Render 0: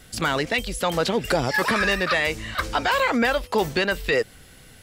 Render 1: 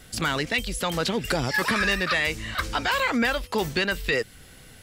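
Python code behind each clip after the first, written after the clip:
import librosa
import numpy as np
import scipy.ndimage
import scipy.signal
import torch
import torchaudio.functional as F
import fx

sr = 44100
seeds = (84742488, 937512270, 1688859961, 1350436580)

y = fx.dynamic_eq(x, sr, hz=630.0, q=0.76, threshold_db=-36.0, ratio=4.0, max_db=-6)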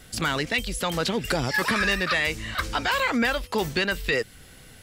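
y = x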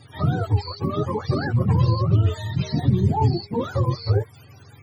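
y = fx.octave_mirror(x, sr, pivot_hz=450.0)
y = y * librosa.db_to_amplitude(3.5)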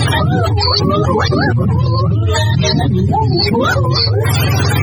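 y = fx.env_flatten(x, sr, amount_pct=100)
y = y * librosa.db_to_amplitude(1.0)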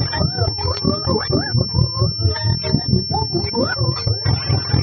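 y = fx.harmonic_tremolo(x, sr, hz=4.4, depth_pct=70, crossover_hz=810.0)
y = fx.transient(y, sr, attack_db=10, sustain_db=-11)
y = fx.pwm(y, sr, carrier_hz=5400.0)
y = y * librosa.db_to_amplitude(-5.5)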